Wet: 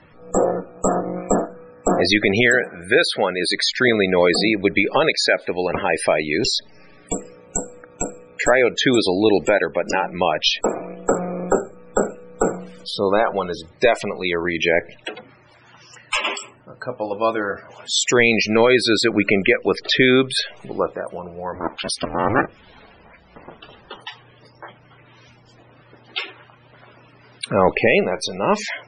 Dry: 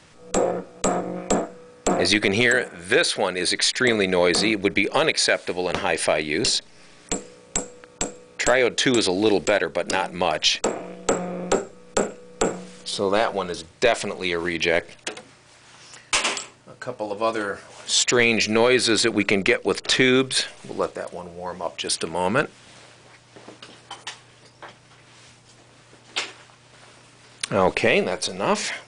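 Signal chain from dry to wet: 21.55–23.97 s: cycle switcher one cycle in 2, inverted; treble shelf 4.5 kHz -2.5 dB; loudest bins only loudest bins 64; trim +3.5 dB

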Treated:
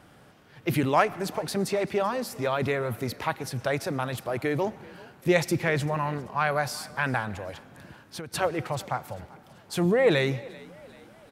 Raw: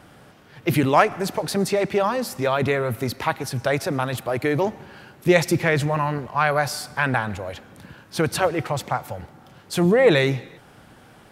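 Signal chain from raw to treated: frequency-shifting echo 388 ms, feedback 48%, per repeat +39 Hz, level -22 dB; 7.50–8.34 s: compression 6:1, threshold -31 dBFS, peak gain reduction 13.5 dB; trim -5.5 dB

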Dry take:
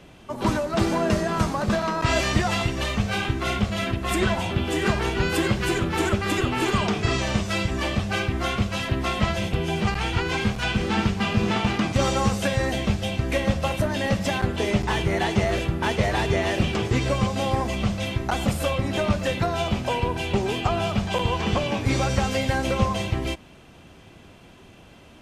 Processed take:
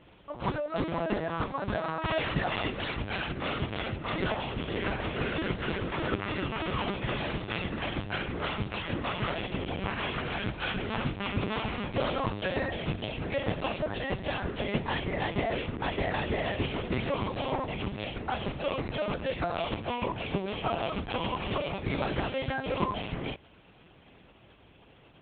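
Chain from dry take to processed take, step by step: LPC vocoder at 8 kHz pitch kept; high-pass 95 Hz 6 dB/octave; trim -6 dB

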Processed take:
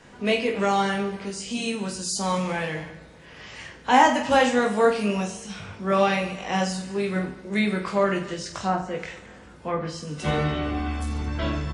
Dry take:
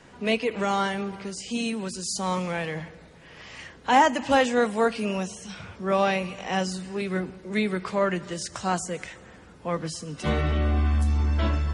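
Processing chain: 8.28–10.03 s: low-pass that closes with the level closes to 1.4 kHz, closed at -22 dBFS; reverse bouncing-ball echo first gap 20 ms, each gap 1.4×, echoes 5

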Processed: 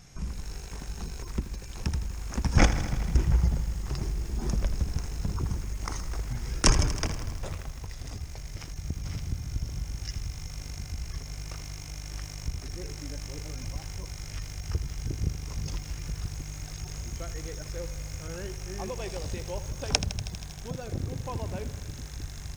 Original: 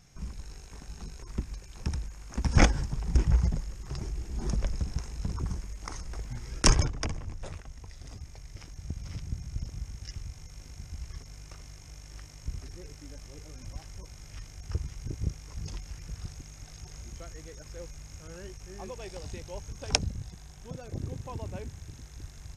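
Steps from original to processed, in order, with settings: in parallel at +2.5 dB: compression 12:1, threshold -38 dBFS, peak gain reduction 24.5 dB; on the sum: bit-crushed delay 80 ms, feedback 80%, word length 7-bit, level -12.5 dB; trim -1 dB

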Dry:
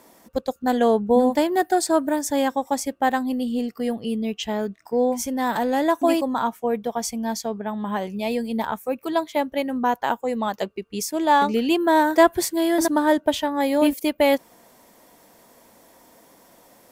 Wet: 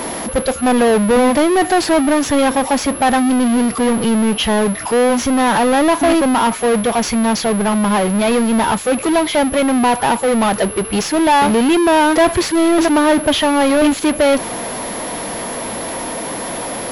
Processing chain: power-law waveshaper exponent 0.35; class-D stage that switches slowly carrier 11 kHz; trim -2 dB

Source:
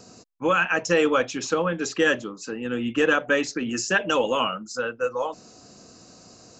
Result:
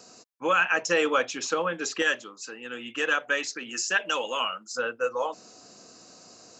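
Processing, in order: high-pass 600 Hz 6 dB/octave, from 2.02 s 1.4 kHz, from 4.74 s 390 Hz

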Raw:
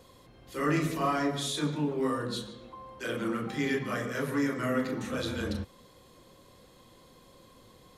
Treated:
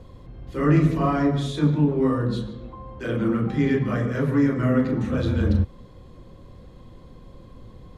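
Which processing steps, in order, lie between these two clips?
RIAA curve playback; trim +3.5 dB

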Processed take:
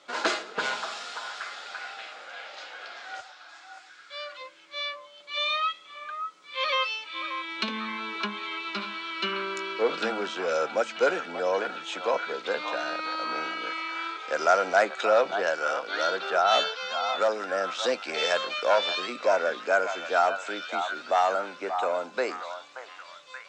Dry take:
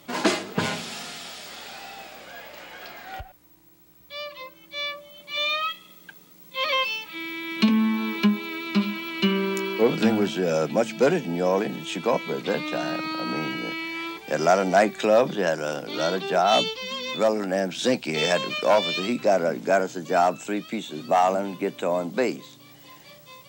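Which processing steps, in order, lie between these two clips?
cabinet simulation 480–7500 Hz, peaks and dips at 500 Hz +4 dB, 1.4 kHz +9 dB, 3.9 kHz +3 dB; repeats whose band climbs or falls 580 ms, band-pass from 1 kHz, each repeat 0.7 oct, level -5 dB; trim -4 dB

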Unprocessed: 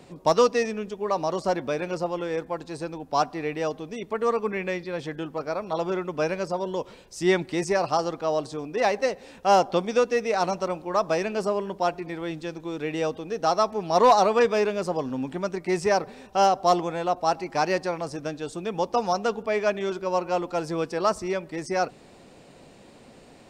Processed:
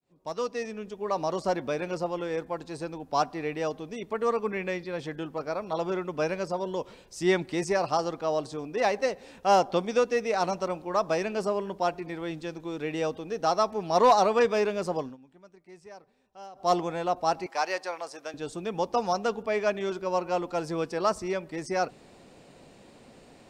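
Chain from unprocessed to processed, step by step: fade-in on the opening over 1.23 s; 14.98–16.73 s: dip -22.5 dB, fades 0.19 s; 17.46–18.34 s: high-pass 610 Hz 12 dB/octave; trim -2.5 dB

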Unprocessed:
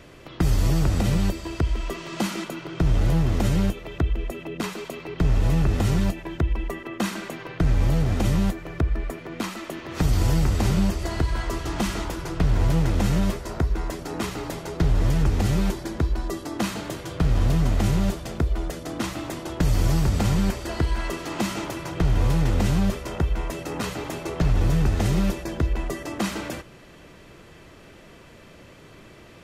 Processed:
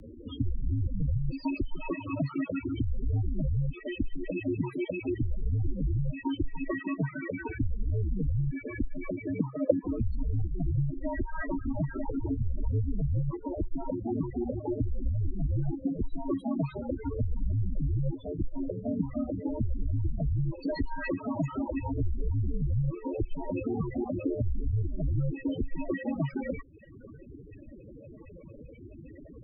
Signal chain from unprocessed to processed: reverb removal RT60 0.88 s; high-pass 58 Hz 6 dB/octave; compression 20:1, threshold -30 dBFS, peak gain reduction 14 dB; loudest bins only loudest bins 8; 9.39–10.00 s: resonant low-pass 620 Hz, resonance Q 4.5; frequency shift -56 Hz; trim +7 dB

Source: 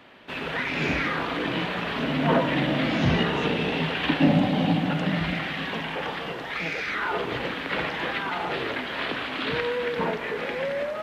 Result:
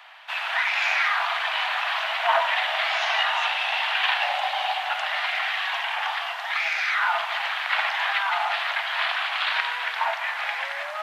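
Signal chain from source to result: steep high-pass 680 Hz 72 dB/octave; trim +5.5 dB

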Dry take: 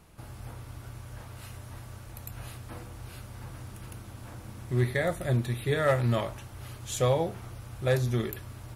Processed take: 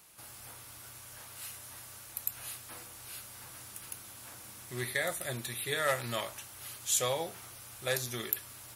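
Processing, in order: tilt EQ +4 dB/octave; trim -4 dB

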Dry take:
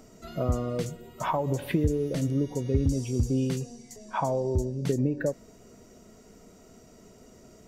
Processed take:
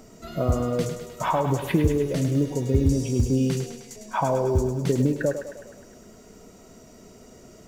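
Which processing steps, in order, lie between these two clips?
thinning echo 103 ms, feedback 65%, high-pass 360 Hz, level -7.5 dB; companded quantiser 8-bit; flange 1.2 Hz, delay 4.9 ms, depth 7.2 ms, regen -88%; trim +8.5 dB

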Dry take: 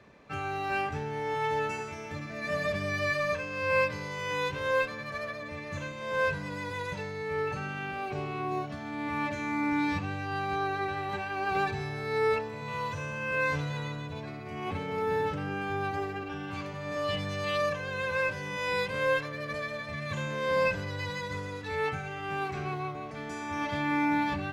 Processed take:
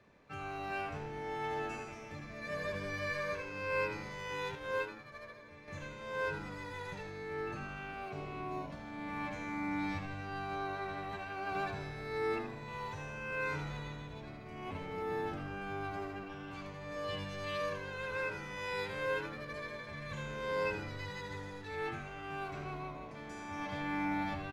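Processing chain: frequency-shifting echo 80 ms, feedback 50%, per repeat -100 Hz, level -9 dB; 4.55–5.68 s: upward expansion 1.5:1, over -38 dBFS; trim -8.5 dB

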